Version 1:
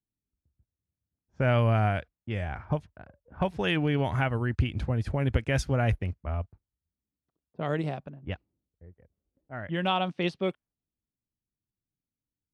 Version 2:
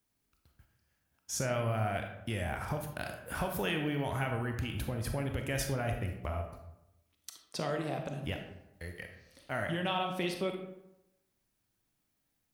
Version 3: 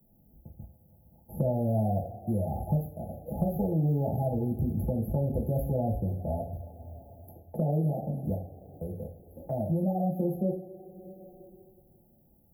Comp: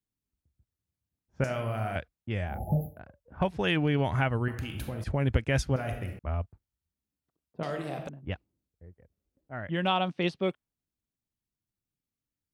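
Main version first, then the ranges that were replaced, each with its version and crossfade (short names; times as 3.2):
1
1.44–1.96 from 2
2.53–2.93 from 3, crossfade 0.16 s
4.48–5.04 from 2
5.76–6.19 from 2
7.63–8.09 from 2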